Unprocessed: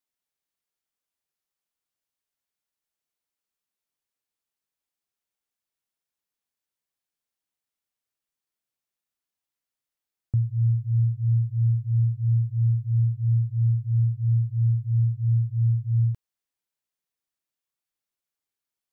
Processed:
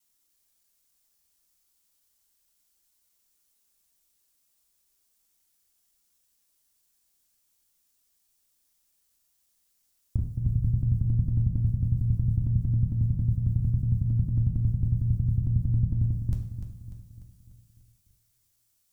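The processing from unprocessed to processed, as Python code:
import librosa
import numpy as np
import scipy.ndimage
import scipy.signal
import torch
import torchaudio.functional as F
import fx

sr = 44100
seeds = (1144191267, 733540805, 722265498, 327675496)

p1 = fx.block_reorder(x, sr, ms=91.0, group=3)
p2 = fx.peak_eq(p1, sr, hz=120.0, db=-13.5, octaves=1.0)
p3 = fx.over_compress(p2, sr, threshold_db=-42.0, ratio=-1.0)
p4 = p2 + (p3 * 10.0 ** (1.5 / 20.0))
p5 = fx.bass_treble(p4, sr, bass_db=14, treble_db=12)
p6 = p5 + fx.echo_feedback(p5, sr, ms=296, feedback_pct=52, wet_db=-10, dry=0)
p7 = fx.rev_double_slope(p6, sr, seeds[0], early_s=0.59, late_s=2.7, knee_db=-18, drr_db=2.0)
y = p7 * 10.0 ** (-6.5 / 20.0)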